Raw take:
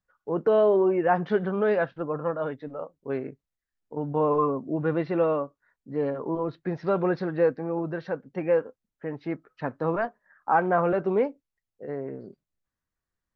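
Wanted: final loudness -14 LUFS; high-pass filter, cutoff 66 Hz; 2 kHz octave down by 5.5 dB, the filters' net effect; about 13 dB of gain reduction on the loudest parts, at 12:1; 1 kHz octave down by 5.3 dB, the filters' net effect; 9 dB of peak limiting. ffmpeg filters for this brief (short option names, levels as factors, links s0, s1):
-af "highpass=66,equalizer=f=1000:t=o:g=-6.5,equalizer=f=2000:t=o:g=-4.5,acompressor=threshold=0.0251:ratio=12,volume=20,alimiter=limit=0.596:level=0:latency=1"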